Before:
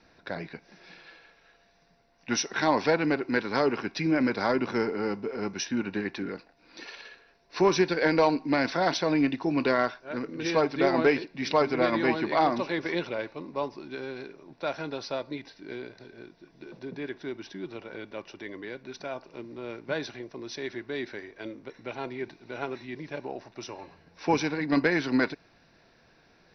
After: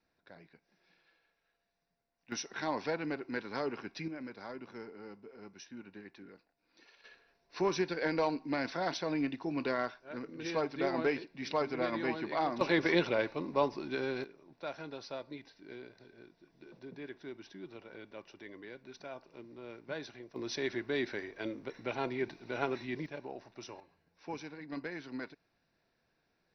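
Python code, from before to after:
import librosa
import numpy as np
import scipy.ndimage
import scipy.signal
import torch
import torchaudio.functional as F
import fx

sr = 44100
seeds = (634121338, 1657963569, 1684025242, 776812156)

y = fx.gain(x, sr, db=fx.steps((0.0, -20.0), (2.32, -11.0), (4.08, -19.0), (7.04, -9.0), (12.61, 1.5), (14.24, -9.5), (20.36, 0.0), (23.06, -7.5), (23.8, -17.0)))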